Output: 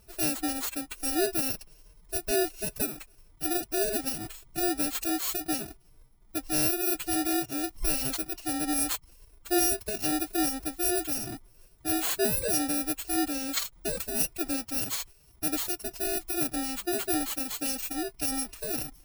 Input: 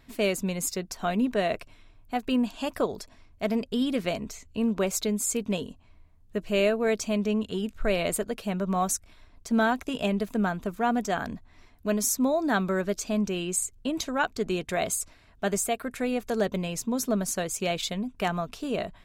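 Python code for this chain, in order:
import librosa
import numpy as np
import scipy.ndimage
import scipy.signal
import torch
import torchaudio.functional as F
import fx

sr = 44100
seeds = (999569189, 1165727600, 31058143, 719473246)

y = fx.bit_reversed(x, sr, seeds[0], block=64)
y = fx.pitch_keep_formants(y, sr, semitones=7.5)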